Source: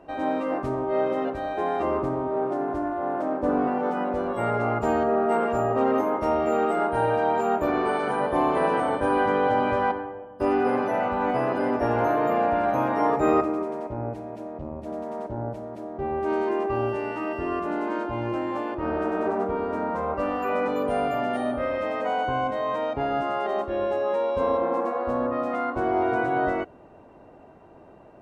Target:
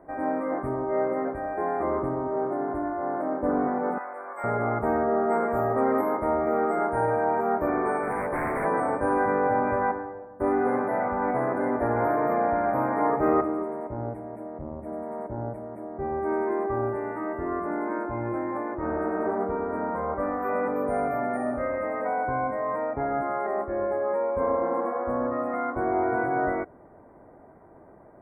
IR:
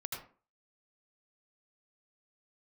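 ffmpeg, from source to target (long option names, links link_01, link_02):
-filter_complex "[0:a]asettb=1/sr,asplit=3[link_01][link_02][link_03];[link_01]atrim=end=3.984[link_04];[link_02]atrim=start=3.98:end=4.44,asetpts=PTS-STARTPTS,afade=type=in:duration=0.004:curve=qsin,afade=type=out:start_time=0.456:duration=0.004:curve=qsin,highpass=990[link_05];[link_03]atrim=start=4.436[link_06];[link_04][link_05]acrossfade=duration=0.004:curve1=hsin:curve2=qsin[link_07];[link_07][link_06]acrossfade=duration=0.004:curve1=qsin:curve2=hsin,asettb=1/sr,asplit=3[link_08][link_09][link_10];[link_08]atrim=end=5.504[link_11];[link_09]atrim=start=5.5:end=6.17,asetpts=PTS-STARTPTS,afade=type=in:duration=0.004:curve=qsin,afade=type=out:start_time=0.666:duration=0.004:curve=qsin,highshelf=frequency=3500:gain=9.5[link_12];[link_10]atrim=start=6.166[link_13];[link_11][link_12]acrossfade=duration=0.004:curve1=hsin:curve2=qsin[link_14];[link_14][link_13]acrossfade=duration=0.004:curve1=qsin:curve2=hsin,asplit=3[link_15][link_16][link_17];[link_15]afade=type=out:start_time=8.02:duration=0.02[link_18];[link_16]aeval=exprs='0.0891*(abs(mod(val(0)/0.0891+3,4)-2)-1)':channel_layout=same,afade=type=in:start_time=8.02:duration=0.02,afade=type=out:start_time=8.64:duration=0.02[link_19];[link_17]afade=type=in:start_time=8.64:duration=0.02[link_20];[link_18][link_19][link_20]amix=inputs=3:normalize=0,asuperstop=centerf=4400:order=20:qfactor=0.75,volume=-1.5dB"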